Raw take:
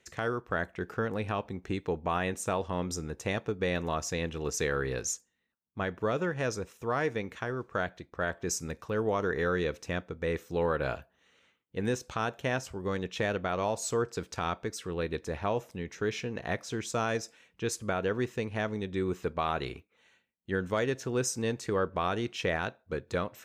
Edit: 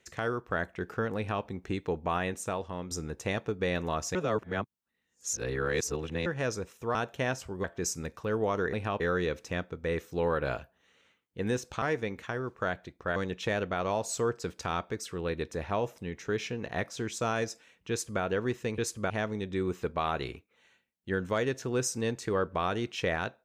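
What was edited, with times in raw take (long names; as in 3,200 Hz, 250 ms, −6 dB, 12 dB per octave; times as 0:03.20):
0:01.17–0:01.44: duplicate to 0:09.38
0:02.13–0:02.91: fade out, to −7 dB
0:04.15–0:06.26: reverse
0:06.95–0:08.29: swap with 0:12.20–0:12.89
0:17.63–0:17.95: duplicate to 0:18.51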